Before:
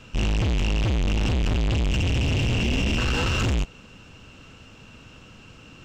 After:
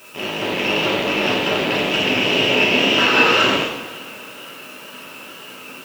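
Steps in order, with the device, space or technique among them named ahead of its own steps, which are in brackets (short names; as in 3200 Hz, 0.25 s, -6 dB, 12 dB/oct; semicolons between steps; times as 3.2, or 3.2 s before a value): dictaphone (BPF 320–3500 Hz; AGC gain up to 7 dB; wow and flutter; white noise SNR 27 dB); HPF 200 Hz 6 dB/oct; two-slope reverb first 0.75 s, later 2.9 s, from -18 dB, DRR -4.5 dB; gain +2 dB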